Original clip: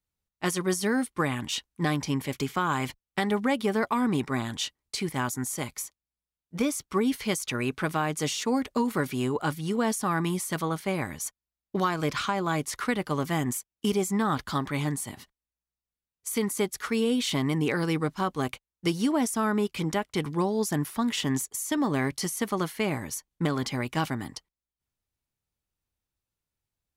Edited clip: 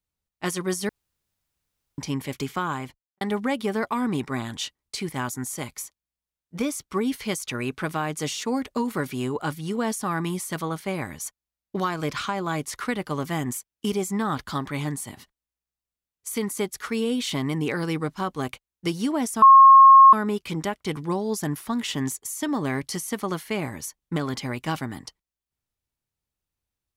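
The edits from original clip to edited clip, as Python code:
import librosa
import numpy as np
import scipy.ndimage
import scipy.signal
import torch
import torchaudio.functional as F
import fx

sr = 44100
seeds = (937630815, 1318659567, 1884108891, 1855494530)

y = fx.studio_fade_out(x, sr, start_s=2.57, length_s=0.64)
y = fx.edit(y, sr, fx.room_tone_fill(start_s=0.89, length_s=1.09),
    fx.insert_tone(at_s=19.42, length_s=0.71, hz=1080.0, db=-7.0), tone=tone)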